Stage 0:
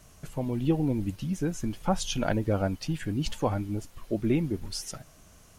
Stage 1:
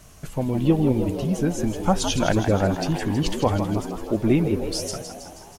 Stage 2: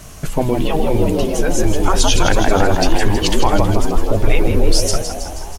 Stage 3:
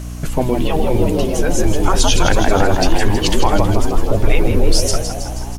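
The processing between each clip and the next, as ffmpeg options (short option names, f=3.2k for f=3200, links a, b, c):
-filter_complex "[0:a]asplit=9[a][b][c][d][e][f][g][h][i];[b]adelay=160,afreqshift=78,volume=-9dB[j];[c]adelay=320,afreqshift=156,volume=-13.2dB[k];[d]adelay=480,afreqshift=234,volume=-17.3dB[l];[e]adelay=640,afreqshift=312,volume=-21.5dB[m];[f]adelay=800,afreqshift=390,volume=-25.6dB[n];[g]adelay=960,afreqshift=468,volume=-29.8dB[o];[h]adelay=1120,afreqshift=546,volume=-33.9dB[p];[i]adelay=1280,afreqshift=624,volume=-38.1dB[q];[a][j][k][l][m][n][o][p][q]amix=inputs=9:normalize=0,volume=6dB"
-af "afftfilt=real='re*lt(hypot(re,im),0.501)':imag='im*lt(hypot(re,im),0.501)':win_size=1024:overlap=0.75,asubboost=boost=8.5:cutoff=55,alimiter=level_in=12.5dB:limit=-1dB:release=50:level=0:latency=1,volume=-1dB"
-af "aeval=exprs='val(0)+0.0501*(sin(2*PI*60*n/s)+sin(2*PI*2*60*n/s)/2+sin(2*PI*3*60*n/s)/3+sin(2*PI*4*60*n/s)/4+sin(2*PI*5*60*n/s)/5)':c=same"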